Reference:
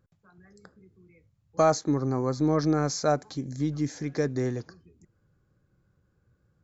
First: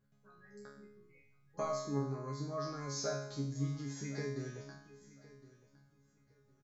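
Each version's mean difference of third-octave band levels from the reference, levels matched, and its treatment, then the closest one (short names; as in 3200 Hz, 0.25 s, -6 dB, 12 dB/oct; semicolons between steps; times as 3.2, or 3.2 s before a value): 7.0 dB: compressor 2.5:1, threshold -35 dBFS, peak gain reduction 12.5 dB; resonator bank C#3 fifth, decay 0.69 s; on a send: feedback echo 1.061 s, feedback 23%, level -19 dB; on the sum: gain +15.5 dB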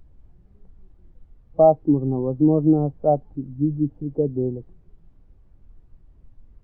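9.0 dB: Chebyshev band-pass 130–890 Hz, order 3; added noise brown -45 dBFS; spectral expander 1.5:1; gain +8 dB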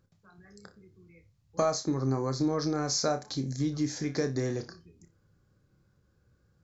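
3.5 dB: bell 5000 Hz +6.5 dB 1.1 oct; compressor 5:1, threshold -25 dBFS, peak gain reduction 8.5 dB; on a send: flutter echo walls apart 5.1 m, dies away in 0.22 s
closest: third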